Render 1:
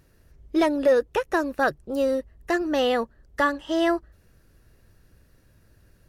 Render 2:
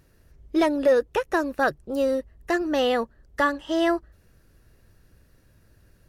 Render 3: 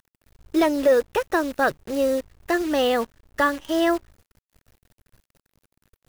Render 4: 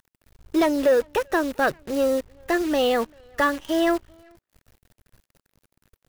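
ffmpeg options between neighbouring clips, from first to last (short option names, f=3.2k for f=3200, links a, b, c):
-af anull
-af "agate=range=-8dB:threshold=-54dB:ratio=16:detection=peak,acrusher=bits=7:dc=4:mix=0:aa=0.000001,volume=1.5dB"
-filter_complex "[0:a]asplit=2[a][b];[b]asoftclip=type=hard:threshold=-19.5dB,volume=-4dB[c];[a][c]amix=inputs=2:normalize=0,asplit=2[d][e];[e]adelay=390,highpass=300,lowpass=3.4k,asoftclip=type=hard:threshold=-18dB,volume=-27dB[f];[d][f]amix=inputs=2:normalize=0,volume=-3.5dB"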